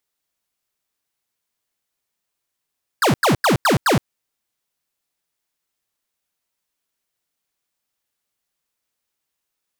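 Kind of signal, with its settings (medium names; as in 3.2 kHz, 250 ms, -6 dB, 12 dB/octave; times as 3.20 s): burst of laser zaps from 1.8 kHz, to 96 Hz, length 0.12 s square, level -15 dB, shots 5, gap 0.09 s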